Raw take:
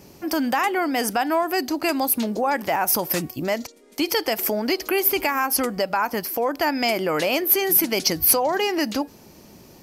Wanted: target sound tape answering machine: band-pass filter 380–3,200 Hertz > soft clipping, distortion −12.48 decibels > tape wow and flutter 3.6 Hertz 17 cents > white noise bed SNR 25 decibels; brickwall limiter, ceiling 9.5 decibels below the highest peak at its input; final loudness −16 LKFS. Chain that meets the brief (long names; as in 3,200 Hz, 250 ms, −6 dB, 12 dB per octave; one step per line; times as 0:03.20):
brickwall limiter −13 dBFS
band-pass filter 380–3,200 Hz
soft clipping −21.5 dBFS
tape wow and flutter 3.6 Hz 17 cents
white noise bed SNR 25 dB
level +13.5 dB